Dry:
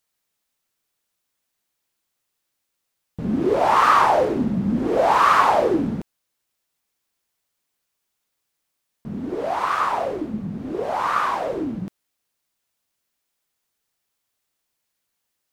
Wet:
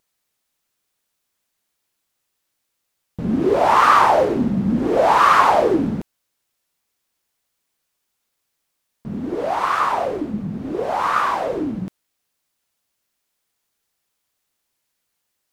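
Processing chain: vibrato 7.9 Hz 50 cents; trim +2.5 dB

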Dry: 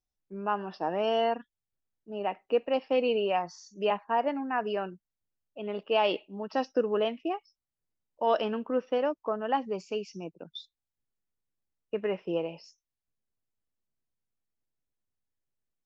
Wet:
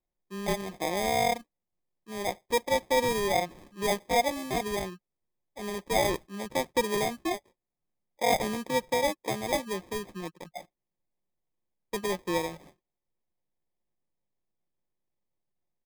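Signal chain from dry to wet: sample-and-hold 31×; comb 5.6 ms, depth 32%

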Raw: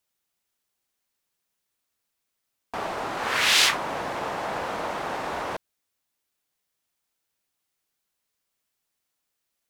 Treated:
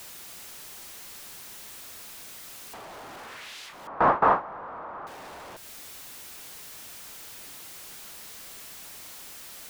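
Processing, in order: jump at every zero crossing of -22.5 dBFS; compression 6:1, threshold -27 dBFS, peak gain reduction 12.5 dB; 3.87–5.07 s: resonant low-pass 1.2 kHz, resonance Q 2.6; gate with hold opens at -16 dBFS; trim +6.5 dB

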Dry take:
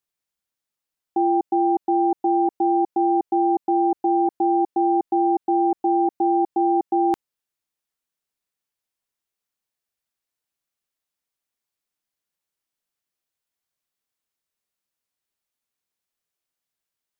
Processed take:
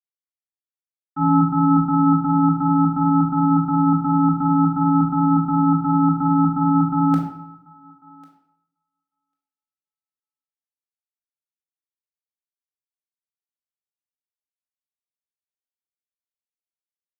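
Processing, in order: ring modulator 510 Hz; on a send: thinning echo 1096 ms, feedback 17%, high-pass 530 Hz, level -9.5 dB; on the sum: simulated room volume 710 m³, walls mixed, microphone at 2.1 m; three bands expanded up and down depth 100%

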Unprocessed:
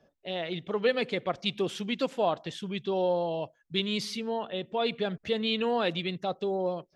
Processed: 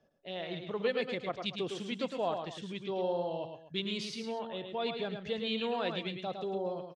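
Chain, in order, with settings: low-pass 9.4 kHz 24 dB/octave; on a send: multi-tap echo 108/138/240 ms -6/-18/-16 dB; on the sum: trim -6.5 dB

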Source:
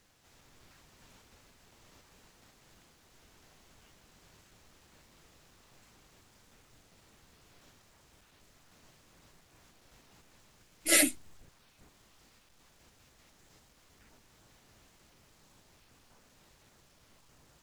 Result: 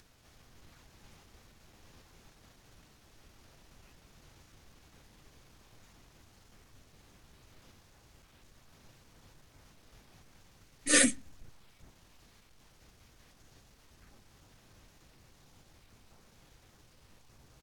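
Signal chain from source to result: bass shelf 220 Hz +6 dB; upward compressor, threshold -58 dBFS; pitch shift -2 st; on a send: reverberation RT60 0.45 s, pre-delay 3 ms, DRR 19 dB

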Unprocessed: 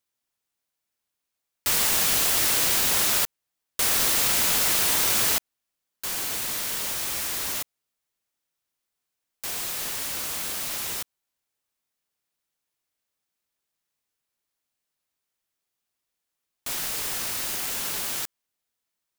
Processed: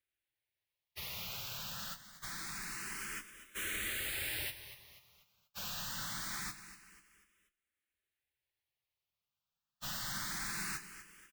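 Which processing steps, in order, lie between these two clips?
FFT filter 140 Hz 0 dB, 230 Hz -5 dB, 610 Hz -10 dB, 1.8 kHz 0 dB, 6.5 kHz -11 dB; gated-style reverb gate 100 ms falling, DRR 7 dB; compressor with a negative ratio -35 dBFS, ratio -1; dynamic bell 930 Hz, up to -3 dB, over -48 dBFS, Q 1.5; feedback delay 412 ms, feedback 43%, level -13 dB; plain phase-vocoder stretch 0.59×; barber-pole phaser +0.25 Hz; trim +1 dB

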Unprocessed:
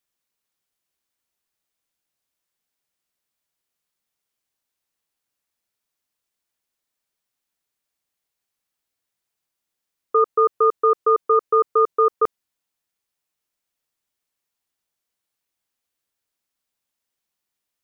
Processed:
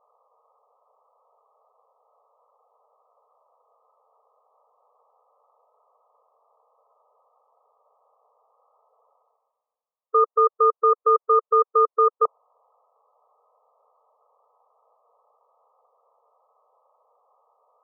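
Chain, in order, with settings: reverse; upward compressor, threshold -26 dBFS; reverse; brick-wall FIR band-pass 430–1300 Hz

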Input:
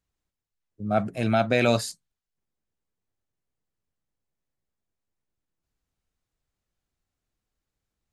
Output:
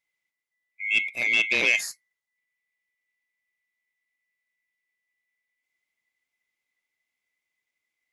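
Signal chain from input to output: split-band scrambler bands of 2 kHz; bass shelf 81 Hz -7 dB; transformer saturation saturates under 1.6 kHz

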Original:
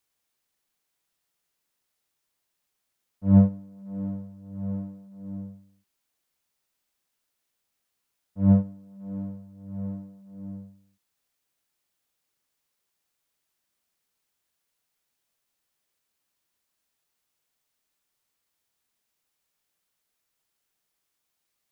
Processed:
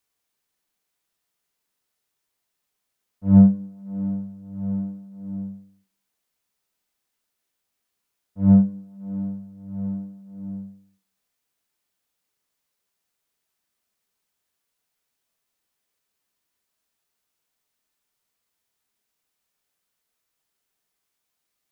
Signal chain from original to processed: on a send: elliptic high-pass 180 Hz + reverberation RT60 0.50 s, pre-delay 4 ms, DRR 7.5 dB

